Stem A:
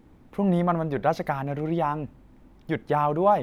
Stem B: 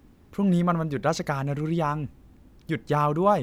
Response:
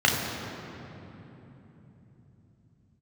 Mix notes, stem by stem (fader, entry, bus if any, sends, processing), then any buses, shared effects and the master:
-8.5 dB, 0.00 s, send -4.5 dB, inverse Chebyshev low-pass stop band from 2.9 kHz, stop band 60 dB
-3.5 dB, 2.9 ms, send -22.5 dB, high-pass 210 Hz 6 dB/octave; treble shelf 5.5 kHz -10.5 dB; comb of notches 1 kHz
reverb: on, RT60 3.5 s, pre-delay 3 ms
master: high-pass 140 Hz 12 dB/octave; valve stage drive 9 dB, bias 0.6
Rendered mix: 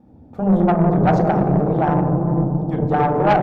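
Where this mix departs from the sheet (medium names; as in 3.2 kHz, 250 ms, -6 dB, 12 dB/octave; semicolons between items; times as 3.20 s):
stem A -8.5 dB -> -2.0 dB; master: missing high-pass 140 Hz 12 dB/octave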